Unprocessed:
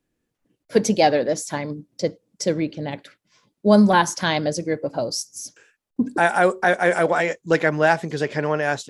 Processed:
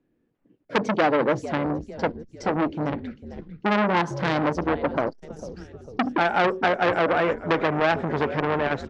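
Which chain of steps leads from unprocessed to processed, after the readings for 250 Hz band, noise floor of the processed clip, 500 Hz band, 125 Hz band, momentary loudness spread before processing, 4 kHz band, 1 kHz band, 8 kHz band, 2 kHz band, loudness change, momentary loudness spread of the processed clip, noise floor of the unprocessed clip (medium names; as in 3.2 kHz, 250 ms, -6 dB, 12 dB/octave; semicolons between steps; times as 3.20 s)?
-3.5 dB, -70 dBFS, -3.5 dB, -2.5 dB, 13 LU, -5.0 dB, -1.5 dB, under -15 dB, -3.5 dB, -3.5 dB, 13 LU, -78 dBFS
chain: low-pass 2.5 kHz 12 dB/octave; peaking EQ 290 Hz +8 dB 2.2 oct; compression 3:1, threshold -14 dBFS, peak gain reduction 8.5 dB; on a send: frequency-shifting echo 449 ms, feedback 50%, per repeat -70 Hz, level -15.5 dB; on the sum: transformer saturation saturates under 1.9 kHz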